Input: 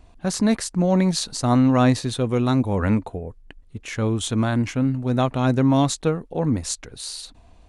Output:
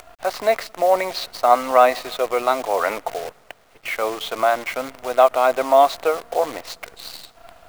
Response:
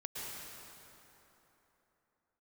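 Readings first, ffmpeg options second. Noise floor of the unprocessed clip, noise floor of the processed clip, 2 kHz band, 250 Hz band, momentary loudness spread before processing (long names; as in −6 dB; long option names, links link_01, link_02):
−51 dBFS, −53 dBFS, +6.5 dB, −15.5 dB, 14 LU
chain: -filter_complex "[0:a]acompressor=mode=upward:threshold=-33dB:ratio=2.5,bandreject=frequency=1700:width=11,acontrast=42,highpass=frequency=470:width=0.5412,highpass=frequency=470:width=1.3066,equalizer=frequency=680:width_type=q:width=4:gain=10,equalizer=frequency=1200:width_type=q:width=4:gain=5,equalizer=frequency=2100:width_type=q:width=4:gain=5,equalizer=frequency=3500:width_type=q:width=4:gain=-4,lowpass=frequency=4000:width=0.5412,lowpass=frequency=4000:width=1.3066,asplit=2[link_01][link_02];[1:a]atrim=start_sample=2205[link_03];[link_02][link_03]afir=irnorm=-1:irlink=0,volume=-23.5dB[link_04];[link_01][link_04]amix=inputs=2:normalize=0,acrusher=bits=6:dc=4:mix=0:aa=0.000001,volume=-1dB"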